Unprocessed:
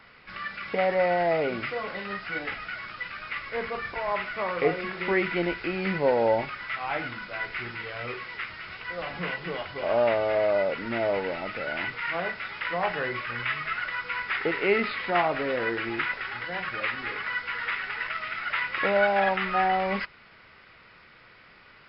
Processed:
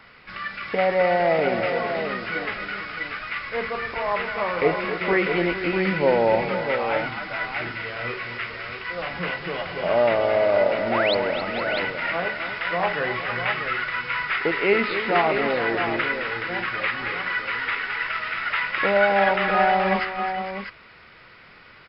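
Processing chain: painted sound rise, 10.9–11.15, 600–4700 Hz -29 dBFS; tapped delay 0.265/0.457/0.646 s -10.5/-13/-7.5 dB; gain +3.5 dB

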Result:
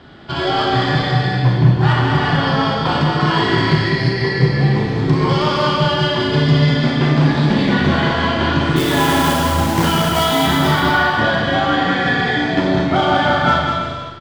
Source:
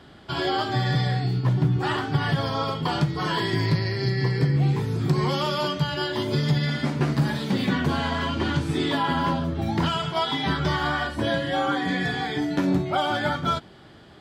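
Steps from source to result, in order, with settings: LPF 4700 Hz 12 dB/oct; added harmonics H 6 -27 dB, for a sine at -11 dBFS; 8.76–10.47 companded quantiser 4-bit; on a send: bouncing-ball echo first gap 0.2 s, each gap 0.7×, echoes 5; on the sum: Schroeder reverb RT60 0.95 s, combs from 26 ms, DRR 1.5 dB; gain +5.5 dB

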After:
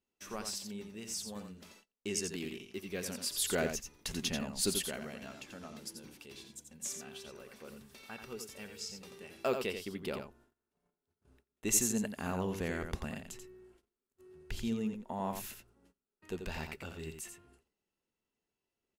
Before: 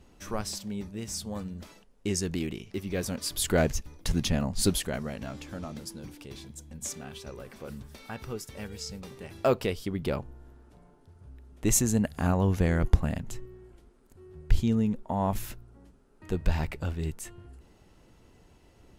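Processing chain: low shelf 200 Hz -8 dB; on a send: echo 87 ms -7 dB; on the sum: gate -55 dBFS, range -22 dB; tilt shelf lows -4.5 dB; small resonant body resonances 220/390/2700 Hz, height 7 dB, ringing for 30 ms; gain -8 dB

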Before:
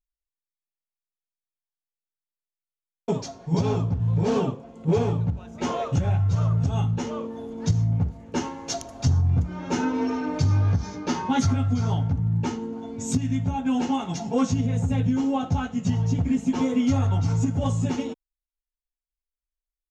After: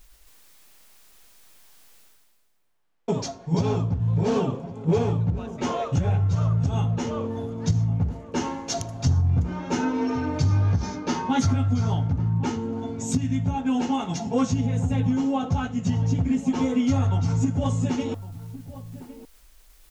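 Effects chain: reverse; upward compressor, threshold -24 dBFS; reverse; outdoor echo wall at 190 m, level -15 dB

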